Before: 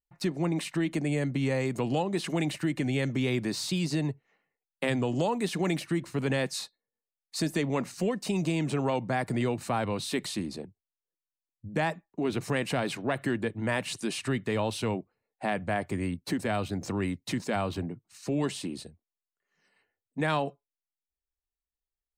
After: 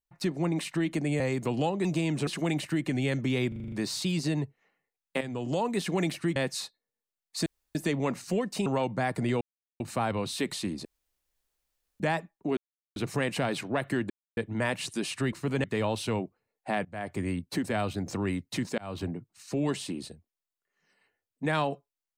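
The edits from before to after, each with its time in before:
1.20–1.53 s: delete
3.39 s: stutter 0.04 s, 7 plays
4.88–5.33 s: fade in, from -12 dB
6.03–6.35 s: move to 14.39 s
7.45 s: insert room tone 0.29 s
8.36–8.78 s: move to 2.18 s
9.53 s: insert silence 0.39 s
10.58–11.73 s: room tone
12.30 s: insert silence 0.39 s
13.44 s: insert silence 0.27 s
15.60–15.96 s: fade in, from -23 dB
17.53–17.78 s: fade in

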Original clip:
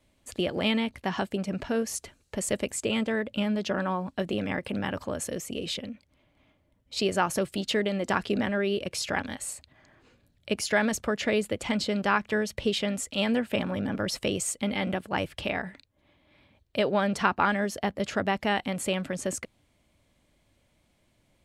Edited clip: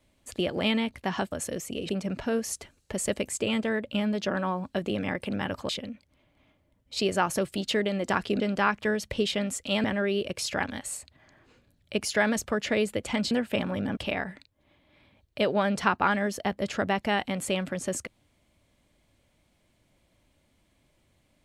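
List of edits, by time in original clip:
5.12–5.69 s: move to 1.32 s
11.87–13.31 s: move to 8.40 s
13.97–15.35 s: delete

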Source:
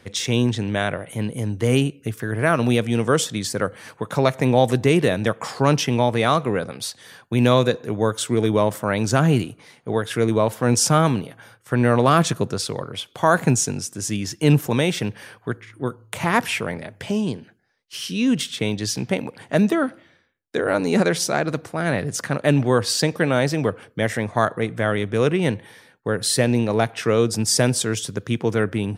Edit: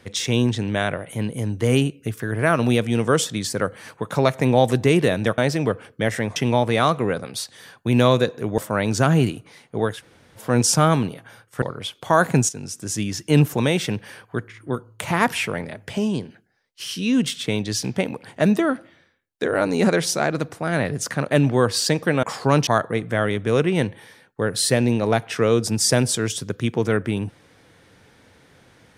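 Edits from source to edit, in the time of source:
5.38–5.82 s: swap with 23.36–24.34 s
8.04–8.71 s: delete
10.10–10.53 s: room tone, crossfade 0.10 s
11.75–12.75 s: delete
13.62–13.98 s: fade in, from -13.5 dB

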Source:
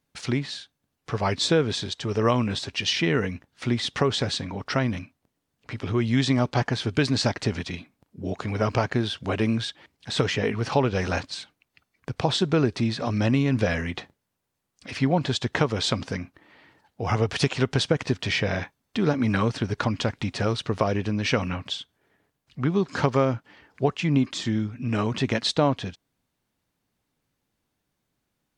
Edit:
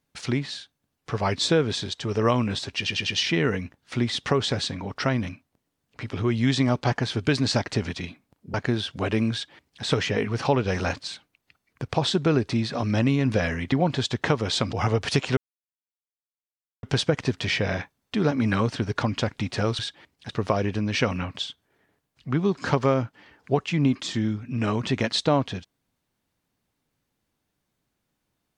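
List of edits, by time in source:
2.77 s: stutter 0.10 s, 4 plays
8.24–8.81 s: delete
9.60–10.11 s: copy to 20.61 s
13.99–15.03 s: delete
16.04–17.01 s: delete
17.65 s: insert silence 1.46 s

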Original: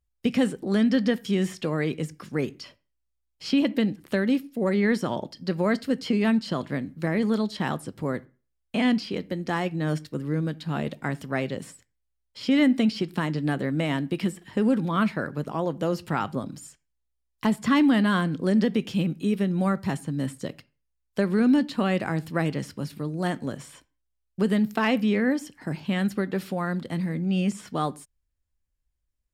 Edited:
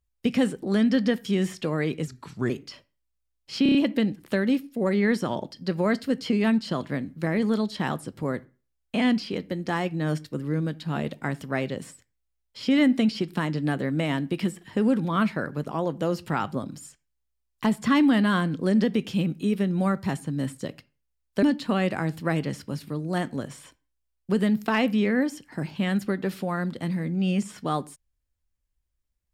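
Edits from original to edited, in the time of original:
2.07–2.42 s: speed 82%
3.55 s: stutter 0.03 s, 5 plays
21.23–21.52 s: delete

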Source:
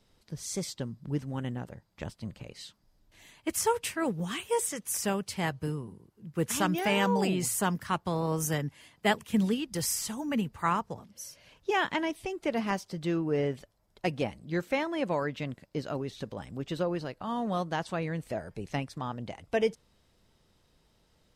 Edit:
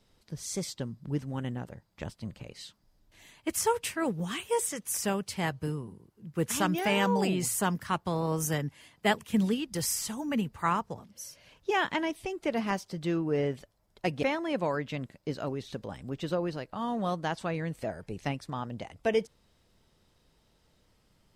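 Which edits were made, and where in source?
14.23–14.71 s: delete

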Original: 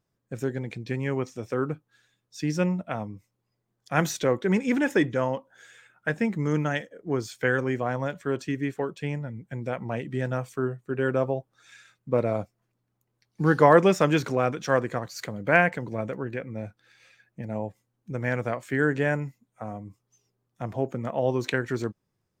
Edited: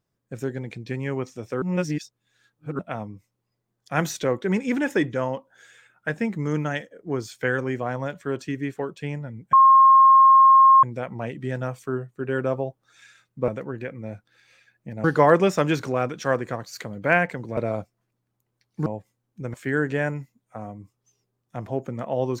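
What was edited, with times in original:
1.62–2.79 s: reverse
9.53 s: add tone 1.07 kHz -9.5 dBFS 1.30 s
12.18–13.47 s: swap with 16.00–17.56 s
18.24–18.60 s: delete

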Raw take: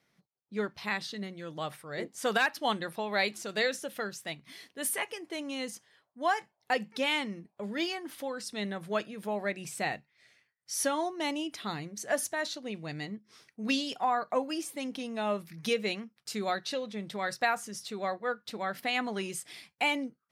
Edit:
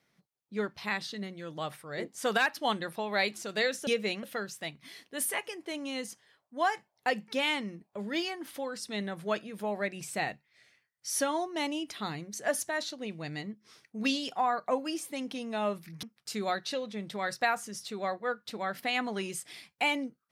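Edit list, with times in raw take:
15.67–16.03 s: move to 3.87 s

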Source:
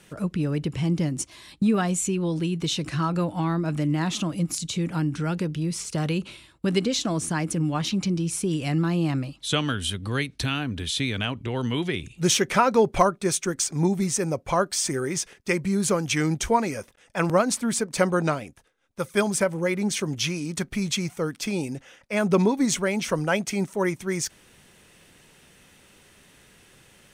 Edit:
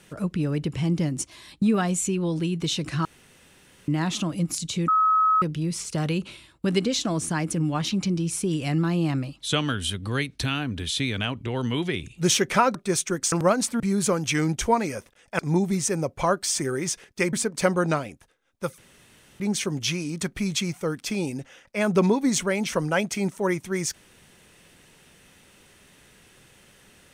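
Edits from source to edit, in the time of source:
3.05–3.88 s: room tone
4.88–5.42 s: bleep 1.28 kHz -16.5 dBFS
12.75–13.11 s: delete
13.68–15.62 s: swap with 17.21–17.69 s
19.14–19.76 s: room tone

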